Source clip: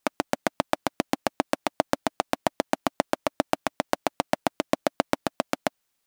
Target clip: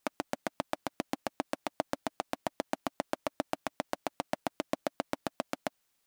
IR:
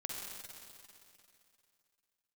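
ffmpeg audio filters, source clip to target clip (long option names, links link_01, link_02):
-af "alimiter=limit=-13.5dB:level=0:latency=1:release=57"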